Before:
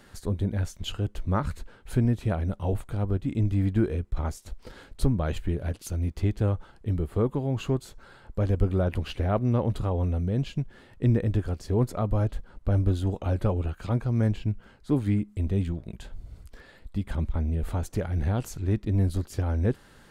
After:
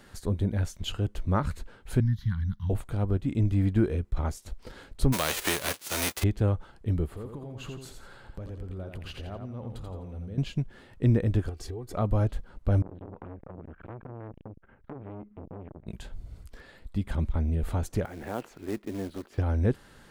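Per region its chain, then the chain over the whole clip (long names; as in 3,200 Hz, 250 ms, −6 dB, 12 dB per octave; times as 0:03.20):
0:02.00–0:02.70: Chebyshev band-stop filter 170–1,300 Hz + parametric band 1,300 Hz −13 dB 0.24 octaves + phaser with its sweep stopped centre 2,500 Hz, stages 6
0:05.12–0:06.22: spectral envelope flattened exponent 0.3 + high-pass filter 230 Hz 6 dB per octave
0:07.08–0:10.38: downward compressor 4 to 1, threshold −38 dBFS + repeating echo 85 ms, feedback 34%, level −6 dB
0:11.49–0:11.94: downward compressor 8 to 1, threshold −35 dBFS + comb filter 2.6 ms, depth 76%
0:12.82–0:15.87: inverse Chebyshev low-pass filter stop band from 5,500 Hz, stop band 50 dB + downward compressor 16 to 1, threshold −32 dBFS + saturating transformer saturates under 670 Hz
0:18.05–0:19.38: three-way crossover with the lows and the highs turned down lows −22 dB, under 240 Hz, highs −20 dB, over 3,100 Hz + floating-point word with a short mantissa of 2 bits
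whole clip: no processing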